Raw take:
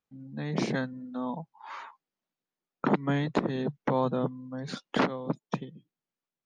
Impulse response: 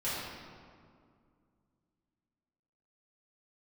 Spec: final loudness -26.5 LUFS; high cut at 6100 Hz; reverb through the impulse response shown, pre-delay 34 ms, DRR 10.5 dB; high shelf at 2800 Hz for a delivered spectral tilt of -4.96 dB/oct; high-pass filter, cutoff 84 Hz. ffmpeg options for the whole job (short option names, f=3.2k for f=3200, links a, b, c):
-filter_complex "[0:a]highpass=84,lowpass=6.1k,highshelf=f=2.8k:g=6.5,asplit=2[a][b];[1:a]atrim=start_sample=2205,adelay=34[c];[b][c]afir=irnorm=-1:irlink=0,volume=-17.5dB[d];[a][d]amix=inputs=2:normalize=0,volume=4.5dB"